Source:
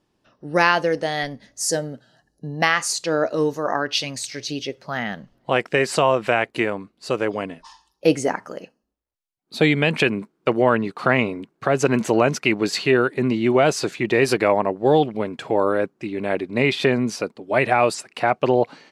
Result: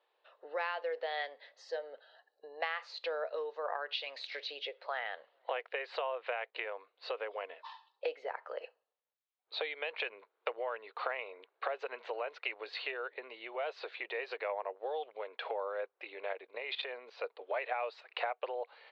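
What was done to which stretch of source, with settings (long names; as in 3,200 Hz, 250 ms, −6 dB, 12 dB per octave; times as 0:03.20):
0:16.33–0:17.24: output level in coarse steps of 14 dB
whole clip: downward compressor 6 to 1, threshold −31 dBFS; Chebyshev band-pass filter 470–4,000 Hz, order 4; level −1.5 dB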